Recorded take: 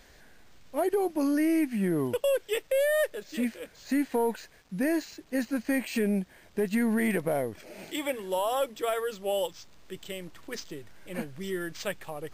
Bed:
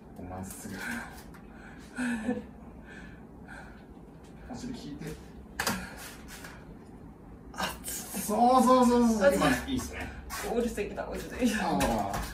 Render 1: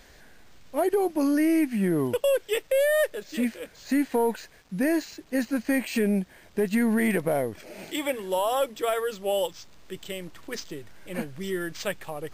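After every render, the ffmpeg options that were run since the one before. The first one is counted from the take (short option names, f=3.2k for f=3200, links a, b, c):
-af "volume=3dB"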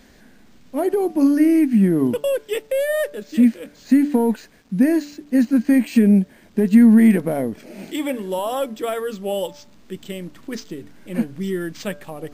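-af "equalizer=f=230:t=o:w=1:g=13.5,bandreject=f=145.8:t=h:w=4,bandreject=f=291.6:t=h:w=4,bandreject=f=437.4:t=h:w=4,bandreject=f=583.2:t=h:w=4,bandreject=f=729:t=h:w=4,bandreject=f=874.8:t=h:w=4,bandreject=f=1.0206k:t=h:w=4,bandreject=f=1.1664k:t=h:w=4,bandreject=f=1.3122k:t=h:w=4,bandreject=f=1.458k:t=h:w=4,bandreject=f=1.6038k:t=h:w=4"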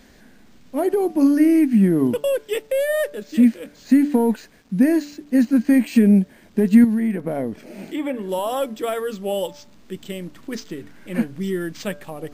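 -filter_complex "[0:a]asettb=1/sr,asplit=3[a][b][c];[a]atrim=end=6.844[d];[b]atrim=start=6.84:end=8.29,asetpts=PTS-STARTPTS,afade=t=in:d=0.004:c=qsin,afade=t=out:st=1.446:d=0.004:c=qsin,acrossover=split=2700|6900[e][f][g];[e]acompressor=threshold=-20dB:ratio=4[h];[f]acompressor=threshold=-55dB:ratio=4[i];[g]acompressor=threshold=-55dB:ratio=4[j];[h][i][j]amix=inputs=3:normalize=0[k];[c]atrim=start=8.286[l];[d][k]acrossfade=d=0.004:c1=hsin:c2=qsin[m];[m][l]acrossfade=d=0.004:c1=qsin:c2=hsin,asettb=1/sr,asplit=3[n][o][p];[n]atrim=end=10.664[q];[o]atrim=start=10.66:end=11.28,asetpts=PTS-STARTPTS,afade=t=in:d=0.004:c=qsin,afade=t=out:st=0.616:d=0.004:c=qsin,equalizer=f=1.7k:w=1:g=5[r];[p]atrim=start=11.276[s];[q][r]acrossfade=d=0.004:c1=hsin:c2=qsin[t];[t][s]acrossfade=d=0.004:c1=qsin:c2=hsin"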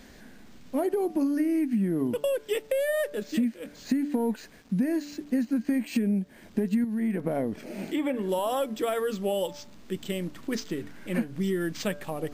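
-af "acompressor=threshold=-24dB:ratio=6"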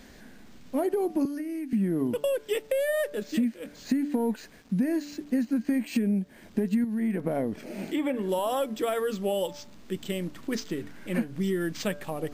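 -filter_complex "[0:a]asettb=1/sr,asplit=3[a][b][c];[a]atrim=end=1.254[d];[b]atrim=start=1.25:end=1.73,asetpts=PTS-STARTPTS,afade=t=in:d=0.004:c=qsin,afade=t=out:st=0.476:d=0.004:c=qsin,acrossover=split=300|2200[e][f][g];[e]acompressor=threshold=-41dB:ratio=4[h];[f]acompressor=threshold=-37dB:ratio=4[i];[g]acompressor=threshold=-52dB:ratio=4[j];[h][i][j]amix=inputs=3:normalize=0[k];[c]atrim=start=1.726[l];[d][k]acrossfade=d=0.004:c1=hsin:c2=qsin[m];[m][l]acrossfade=d=0.004:c1=qsin:c2=hsin"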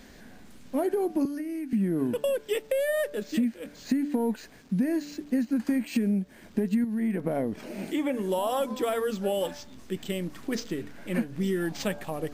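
-filter_complex "[1:a]volume=-20dB[a];[0:a][a]amix=inputs=2:normalize=0"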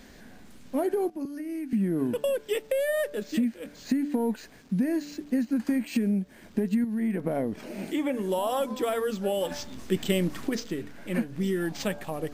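-filter_complex "[0:a]asplit=3[a][b][c];[a]afade=t=out:st=9.5:d=0.02[d];[b]acontrast=65,afade=t=in:st=9.5:d=0.02,afade=t=out:st=10.48:d=0.02[e];[c]afade=t=in:st=10.48:d=0.02[f];[d][e][f]amix=inputs=3:normalize=0,asplit=2[g][h];[g]atrim=end=1.1,asetpts=PTS-STARTPTS,afade=t=out:st=1.096:d=0.004:c=hsin:silence=0.188365[i];[h]atrim=start=1.1,asetpts=PTS-STARTPTS,afade=t=in:d=0.42:silence=0.188365[j];[i][j]concat=n=2:v=0:a=1"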